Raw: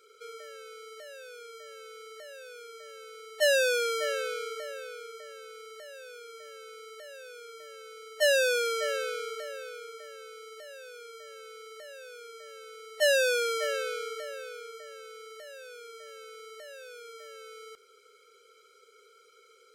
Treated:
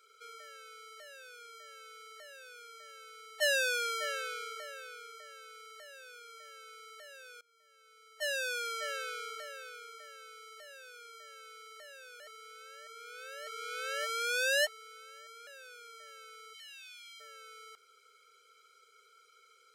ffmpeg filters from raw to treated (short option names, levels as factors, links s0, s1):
-filter_complex "[0:a]asplit=3[s0][s1][s2];[s0]afade=t=out:st=16.53:d=0.02[s3];[s1]highpass=f=2800:t=q:w=2.4,afade=t=in:st=16.53:d=0.02,afade=t=out:st=17.19:d=0.02[s4];[s2]afade=t=in:st=17.19:d=0.02[s5];[s3][s4][s5]amix=inputs=3:normalize=0,asplit=4[s6][s7][s8][s9];[s6]atrim=end=7.41,asetpts=PTS-STARTPTS,afade=t=out:st=7.406:d=0.004:c=hsin:silence=0.0630957[s10];[s7]atrim=start=7.41:end=12.202,asetpts=PTS-STARTPTS,afade=t=in:d=1.83:silence=0.0630957[s11];[s8]atrim=start=12.198:end=15.472,asetpts=PTS-STARTPTS,areverse[s12];[s9]atrim=start=15.468[s13];[s10][s11]concat=n=2:v=0:a=1[s14];[s14][s12]acrossfade=d=0.004:c1=hsin:c2=hsin[s15];[s15][s13]acrossfade=d=0.004:c1=hsin:c2=hsin,lowshelf=f=620:t=q:w=1.5:g=-8,volume=0.708"